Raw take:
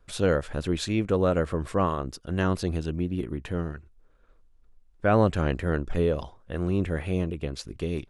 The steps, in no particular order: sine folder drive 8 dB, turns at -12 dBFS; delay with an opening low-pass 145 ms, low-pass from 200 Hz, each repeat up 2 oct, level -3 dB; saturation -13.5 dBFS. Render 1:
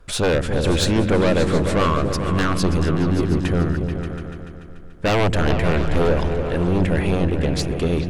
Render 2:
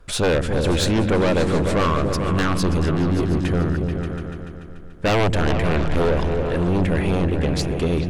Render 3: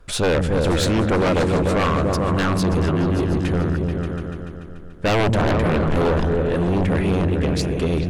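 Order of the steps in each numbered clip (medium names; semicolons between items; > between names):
sine folder > saturation > delay with an opening low-pass; sine folder > delay with an opening low-pass > saturation; delay with an opening low-pass > sine folder > saturation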